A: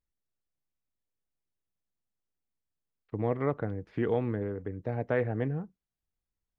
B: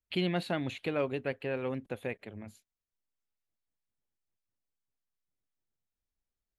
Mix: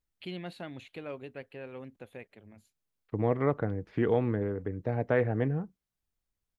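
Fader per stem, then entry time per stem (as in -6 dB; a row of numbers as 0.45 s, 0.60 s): +2.0 dB, -9.0 dB; 0.00 s, 0.10 s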